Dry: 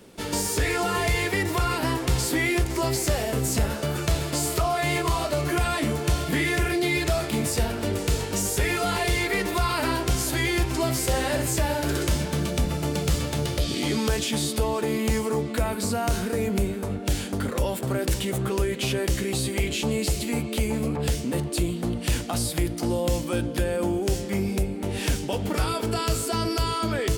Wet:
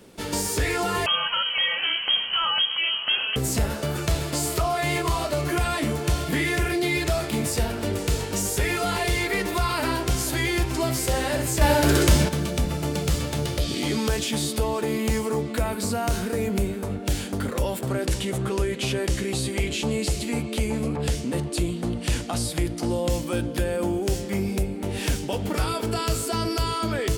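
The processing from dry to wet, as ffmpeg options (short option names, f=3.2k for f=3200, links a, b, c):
-filter_complex "[0:a]asettb=1/sr,asplit=3[a][b][c];[a]atrim=end=1.064[d];[b]atrim=start=1.06:end=3.36,asetpts=PTS-STARTPTS,afade=t=in:d=0.004:c=qsin,afade=t=out:st=2.296:d=0.004:c=qsin,lowpass=f=2.8k:t=q:w=0.5098,lowpass=f=2.8k:t=q:w=0.6013,lowpass=f=2.8k:t=q:w=0.9,lowpass=f=2.8k:t=q:w=2.563,afreqshift=-3300[e];[c]atrim=start=3.356[f];[d][e]acrossfade=d=0.004:c1=hsin:c2=qsin[g];[g][f]acrossfade=d=0.004:c1=qsin:c2=hsin,asettb=1/sr,asplit=3[h][i][j];[h]atrim=end=11.614[k];[i]atrim=start=11.61:end=12.29,asetpts=PTS-STARTPTS,afade=t=in:d=0.004:c=qsin,afade=t=out:st=0.676:d=0.004:c=qsin,acontrast=84[l];[j]atrim=start=12.286[m];[k][l]acrossfade=d=0.004:c1=hsin:c2=qsin[n];[n][m]acrossfade=d=0.004:c1=qsin:c2=hsin,asettb=1/sr,asplit=3[o][p][q];[o]atrim=end=17.884[r];[p]atrim=start=17.88:end=23.1,asetpts=PTS-STARTPTS,afade=t=in:d=0.004:c=qsin,afade=t=out:st=5.216:d=0.004:c=qsin,lowpass=11k[s];[q]atrim=start=23.096[t];[r][s]acrossfade=d=0.004:c1=hsin:c2=qsin[u];[u][t]acrossfade=d=0.004:c1=qsin:c2=hsin"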